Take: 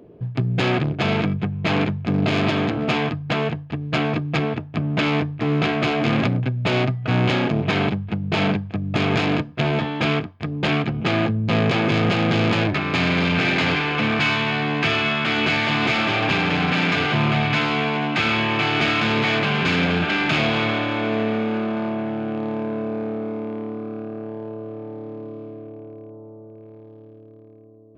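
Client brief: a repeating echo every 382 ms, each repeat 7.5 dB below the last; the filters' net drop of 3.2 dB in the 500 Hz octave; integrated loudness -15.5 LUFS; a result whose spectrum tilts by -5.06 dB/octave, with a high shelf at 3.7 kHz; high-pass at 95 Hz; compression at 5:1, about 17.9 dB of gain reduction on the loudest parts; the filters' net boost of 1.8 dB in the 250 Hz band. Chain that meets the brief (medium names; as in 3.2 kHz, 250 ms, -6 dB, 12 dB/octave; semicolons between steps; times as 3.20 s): high-pass 95 Hz; peaking EQ 250 Hz +4 dB; peaking EQ 500 Hz -5.5 dB; treble shelf 3.7 kHz -8 dB; compression 5:1, threshold -37 dBFS; feedback delay 382 ms, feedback 42%, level -7.5 dB; trim +21.5 dB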